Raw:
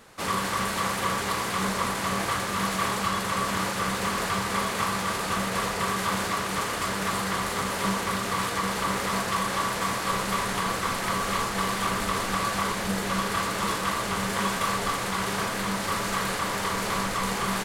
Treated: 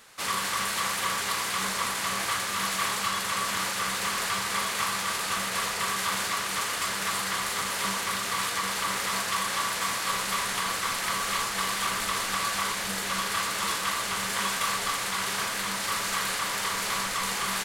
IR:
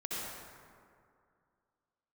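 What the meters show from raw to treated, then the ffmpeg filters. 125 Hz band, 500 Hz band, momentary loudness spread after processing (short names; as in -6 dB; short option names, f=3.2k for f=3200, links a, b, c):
-10.0 dB, -7.5 dB, 1 LU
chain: -af "tiltshelf=f=970:g=-7,volume=-3.5dB"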